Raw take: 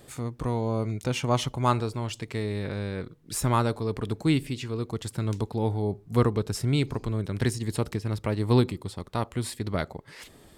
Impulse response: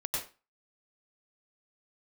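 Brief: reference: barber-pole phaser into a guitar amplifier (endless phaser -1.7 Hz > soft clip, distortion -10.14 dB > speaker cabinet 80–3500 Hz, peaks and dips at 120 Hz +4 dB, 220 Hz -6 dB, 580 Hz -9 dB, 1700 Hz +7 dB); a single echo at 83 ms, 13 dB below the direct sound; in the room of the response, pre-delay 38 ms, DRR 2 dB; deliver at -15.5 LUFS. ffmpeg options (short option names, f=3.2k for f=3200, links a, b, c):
-filter_complex "[0:a]aecho=1:1:83:0.224,asplit=2[a][b];[1:a]atrim=start_sample=2205,adelay=38[c];[b][c]afir=irnorm=-1:irlink=0,volume=-6.5dB[d];[a][d]amix=inputs=2:normalize=0,asplit=2[e][f];[f]afreqshift=-1.7[g];[e][g]amix=inputs=2:normalize=1,asoftclip=threshold=-25.5dB,highpass=80,equalizer=f=120:t=q:w=4:g=4,equalizer=f=220:t=q:w=4:g=-6,equalizer=f=580:t=q:w=4:g=-9,equalizer=f=1.7k:t=q:w=4:g=7,lowpass=f=3.5k:w=0.5412,lowpass=f=3.5k:w=1.3066,volume=17.5dB"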